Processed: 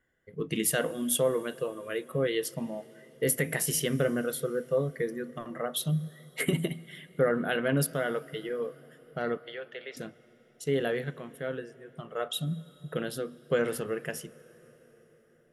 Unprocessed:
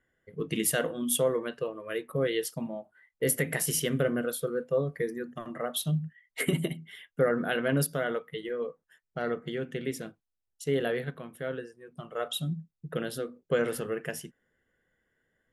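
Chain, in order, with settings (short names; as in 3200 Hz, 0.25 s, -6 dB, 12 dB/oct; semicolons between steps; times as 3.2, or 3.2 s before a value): 9.37–9.97 Chebyshev band-pass 530–4700 Hz, order 3; on a send: reverb RT60 5.4 s, pre-delay 0.108 s, DRR 21 dB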